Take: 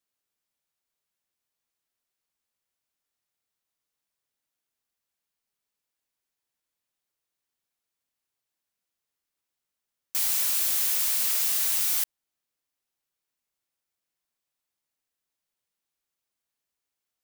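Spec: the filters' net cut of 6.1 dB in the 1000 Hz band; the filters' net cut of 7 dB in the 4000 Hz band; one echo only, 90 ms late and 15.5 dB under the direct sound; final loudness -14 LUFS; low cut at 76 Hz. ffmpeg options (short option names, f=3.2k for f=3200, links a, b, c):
-af "highpass=76,equalizer=f=1k:t=o:g=-7.5,equalizer=f=4k:t=o:g=-9,aecho=1:1:90:0.168,volume=9dB"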